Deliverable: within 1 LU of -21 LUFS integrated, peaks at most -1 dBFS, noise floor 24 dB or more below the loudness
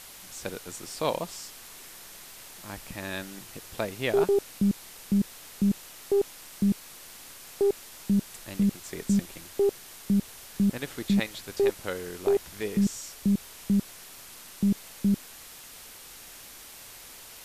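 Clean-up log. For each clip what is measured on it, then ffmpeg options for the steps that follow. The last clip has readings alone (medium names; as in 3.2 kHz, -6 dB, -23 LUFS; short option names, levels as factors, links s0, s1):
noise floor -47 dBFS; noise floor target -53 dBFS; loudness -29.0 LUFS; peak level -10.5 dBFS; loudness target -21.0 LUFS
-> -af "afftdn=nr=6:nf=-47"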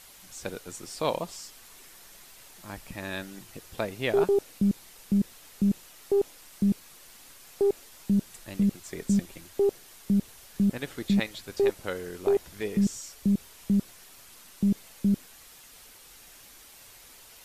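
noise floor -52 dBFS; noise floor target -53 dBFS
-> -af "afftdn=nr=6:nf=-52"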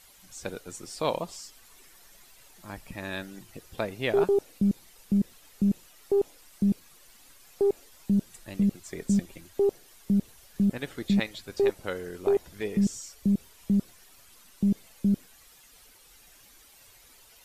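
noise floor -56 dBFS; loudness -29.0 LUFS; peak level -11.0 dBFS; loudness target -21.0 LUFS
-> -af "volume=2.51"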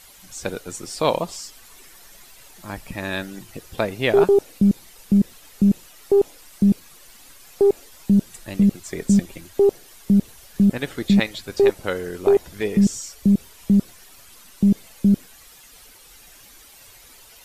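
loudness -21.0 LUFS; peak level -3.0 dBFS; noise floor -48 dBFS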